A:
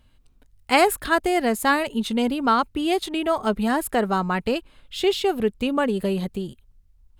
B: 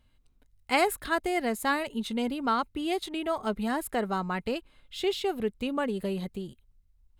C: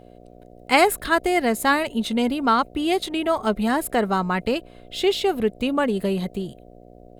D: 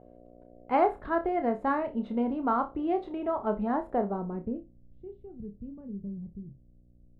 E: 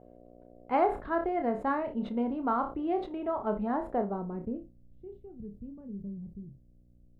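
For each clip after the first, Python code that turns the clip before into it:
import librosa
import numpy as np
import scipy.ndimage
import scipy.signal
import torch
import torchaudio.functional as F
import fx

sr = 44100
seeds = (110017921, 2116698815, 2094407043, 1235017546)

y1 = fx.small_body(x, sr, hz=(2100.0, 3900.0), ring_ms=45, db=7)
y1 = F.gain(torch.from_numpy(y1), -7.5).numpy()
y2 = fx.dmg_buzz(y1, sr, base_hz=60.0, harmonics=12, level_db=-55.0, tilt_db=0, odd_only=False)
y2 = F.gain(torch.from_numpy(y2), 8.0).numpy()
y3 = fx.filter_sweep_lowpass(y2, sr, from_hz=970.0, to_hz=140.0, start_s=3.88, end_s=4.81, q=1.1)
y3 = fx.room_flutter(y3, sr, wall_m=5.1, rt60_s=0.22)
y3 = F.gain(torch.from_numpy(y3), -8.0).numpy()
y4 = fx.sustainer(y3, sr, db_per_s=140.0)
y4 = F.gain(torch.from_numpy(y4), -2.0).numpy()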